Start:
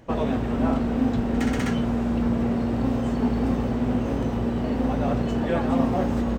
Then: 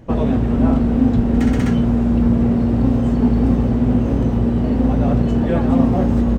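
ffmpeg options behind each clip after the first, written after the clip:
ffmpeg -i in.wav -af "lowshelf=frequency=380:gain=11" out.wav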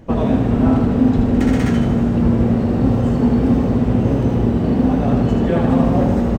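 ffmpeg -i in.wav -af "bandreject=frequency=60:width_type=h:width=6,bandreject=frequency=120:width_type=h:width=6,aecho=1:1:78|156|234|312|390|468|546|624:0.562|0.321|0.183|0.104|0.0594|0.0338|0.0193|0.011,volume=1dB" out.wav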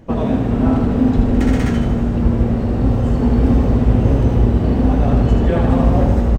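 ffmpeg -i in.wav -af "asubboost=boost=4.5:cutoff=80,dynaudnorm=framelen=500:gausssize=3:maxgain=11.5dB,volume=-1dB" out.wav

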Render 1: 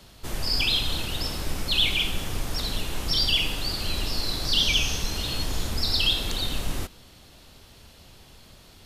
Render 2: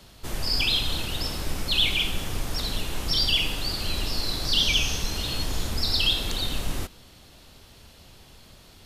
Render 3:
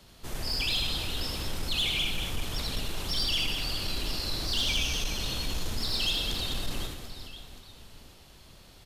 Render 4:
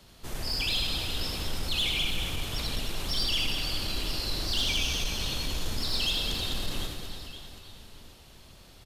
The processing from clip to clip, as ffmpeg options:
ffmpeg -i in.wav -af anull out.wav
ffmpeg -i in.wav -af "aecho=1:1:80|208|412.8|740.5|1265:0.631|0.398|0.251|0.158|0.1,asoftclip=type=tanh:threshold=-16.5dB,volume=-5dB" out.wav
ffmpeg -i in.wav -af "aecho=1:1:313|626|939|1252|1565:0.282|0.132|0.0623|0.0293|0.0138" out.wav

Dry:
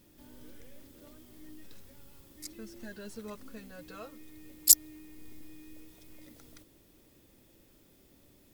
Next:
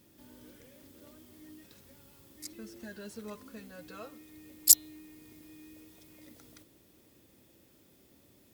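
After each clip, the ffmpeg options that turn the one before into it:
ffmpeg -i in.wav -af "highpass=71,bandreject=frequency=147.2:width_type=h:width=4,bandreject=frequency=294.4:width_type=h:width=4,bandreject=frequency=441.6:width_type=h:width=4,bandreject=frequency=588.8:width_type=h:width=4,bandreject=frequency=736:width_type=h:width=4,bandreject=frequency=883.2:width_type=h:width=4,bandreject=frequency=1030.4:width_type=h:width=4,bandreject=frequency=1177.6:width_type=h:width=4,bandreject=frequency=1324.8:width_type=h:width=4,bandreject=frequency=1472:width_type=h:width=4,bandreject=frequency=1619.2:width_type=h:width=4,bandreject=frequency=1766.4:width_type=h:width=4,bandreject=frequency=1913.6:width_type=h:width=4,bandreject=frequency=2060.8:width_type=h:width=4,bandreject=frequency=2208:width_type=h:width=4,bandreject=frequency=2355.2:width_type=h:width=4,bandreject=frequency=2502.4:width_type=h:width=4,bandreject=frequency=2649.6:width_type=h:width=4,bandreject=frequency=2796.8:width_type=h:width=4,bandreject=frequency=2944:width_type=h:width=4,bandreject=frequency=3091.2:width_type=h:width=4,bandreject=frequency=3238.4:width_type=h:width=4,bandreject=frequency=3385.6:width_type=h:width=4,bandreject=frequency=3532.8:width_type=h:width=4,bandreject=frequency=3680:width_type=h:width=4,bandreject=frequency=3827.2:width_type=h:width=4,bandreject=frequency=3974.4:width_type=h:width=4,bandreject=frequency=4121.6:width_type=h:width=4" out.wav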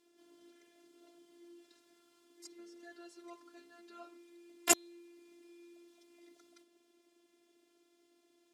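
ffmpeg -i in.wav -af "afftfilt=real='hypot(re,im)*cos(PI*b)':imag='0':win_size=512:overlap=0.75,aeval=exprs='1.26*(cos(1*acos(clip(val(0)/1.26,-1,1)))-cos(1*PI/2))+0.251*(cos(3*acos(clip(val(0)/1.26,-1,1)))-cos(3*PI/2))+0.178*(cos(5*acos(clip(val(0)/1.26,-1,1)))-cos(5*PI/2))+0.398*(cos(8*acos(clip(val(0)/1.26,-1,1)))-cos(8*PI/2))':channel_layout=same,highpass=230,lowpass=7700,volume=-3.5dB" out.wav

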